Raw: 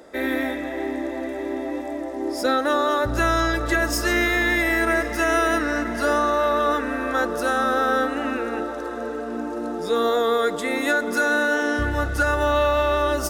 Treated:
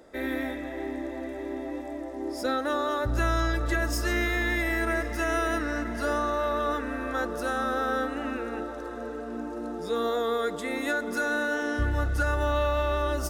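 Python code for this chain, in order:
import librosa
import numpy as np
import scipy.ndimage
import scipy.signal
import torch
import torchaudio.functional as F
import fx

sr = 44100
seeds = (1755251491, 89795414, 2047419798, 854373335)

y = fx.low_shelf(x, sr, hz=120.0, db=10.0)
y = F.gain(torch.from_numpy(y), -7.5).numpy()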